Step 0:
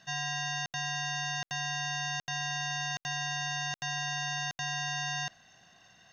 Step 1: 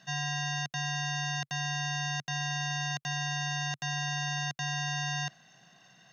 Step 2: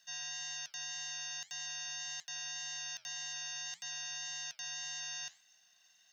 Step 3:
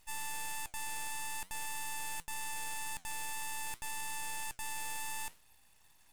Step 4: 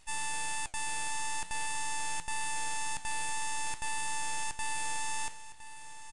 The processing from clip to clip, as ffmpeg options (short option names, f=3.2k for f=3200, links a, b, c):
-af "lowshelf=f=110:t=q:w=3:g=-8.5"
-af "flanger=delay=5.8:depth=6.8:regen=-81:speed=1.8:shape=triangular,aderivative,volume=4dB"
-af "aeval=exprs='abs(val(0))':c=same,volume=4dB"
-af "aecho=1:1:1011|2022|3033:0.2|0.0579|0.0168,aresample=22050,aresample=44100,volume=5.5dB"